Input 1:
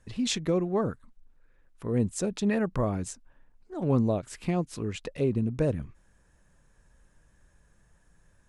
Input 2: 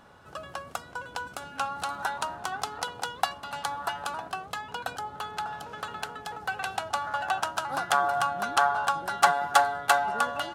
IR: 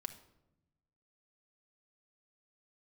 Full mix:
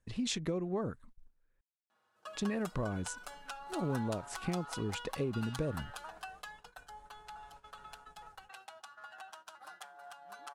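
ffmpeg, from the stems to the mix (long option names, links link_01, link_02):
-filter_complex "[0:a]acompressor=threshold=-29dB:ratio=5,volume=-2.5dB,asplit=3[link_01][link_02][link_03];[link_01]atrim=end=1.61,asetpts=PTS-STARTPTS,afade=type=out:start_time=1.606:duration=0.004:curve=hsin[link_04];[link_02]atrim=start=1.61:end=2.35,asetpts=PTS-STARTPTS,volume=0[link_05];[link_03]atrim=start=2.35,asetpts=PTS-STARTPTS,afade=type=in:duration=0.004:curve=hsin[link_06];[link_04][link_05][link_06]concat=n=3:v=0:a=1[link_07];[1:a]highpass=frequency=720:poles=1,acompressor=threshold=-33dB:ratio=8,asplit=2[link_08][link_09];[link_09]adelay=5.9,afreqshift=-0.28[link_10];[link_08][link_10]amix=inputs=2:normalize=1,adelay=1900,volume=-6.5dB,afade=type=out:start_time=6.24:duration=0.5:silence=0.473151,asplit=2[link_11][link_12];[link_12]volume=-4.5dB[link_13];[2:a]atrim=start_sample=2205[link_14];[link_13][link_14]afir=irnorm=-1:irlink=0[link_15];[link_07][link_11][link_15]amix=inputs=3:normalize=0,agate=range=-12dB:threshold=-54dB:ratio=16:detection=peak"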